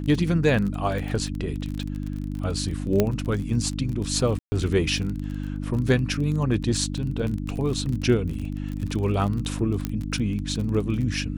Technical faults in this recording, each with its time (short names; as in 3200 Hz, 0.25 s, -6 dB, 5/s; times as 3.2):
crackle 30/s -29 dBFS
hum 50 Hz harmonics 6 -30 dBFS
3 pop -7 dBFS
4.39–4.52 gap 0.13 s
9.85 pop -12 dBFS